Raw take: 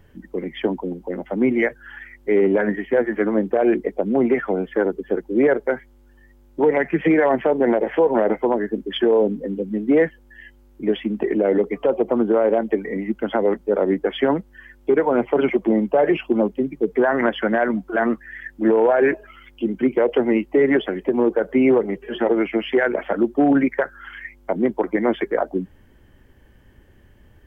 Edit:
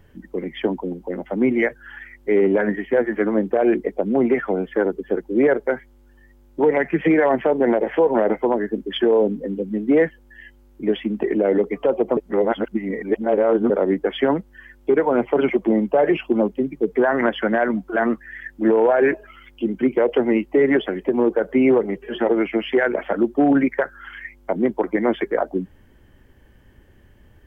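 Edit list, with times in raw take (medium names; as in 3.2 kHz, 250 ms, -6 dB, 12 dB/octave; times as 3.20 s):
12.17–13.70 s: reverse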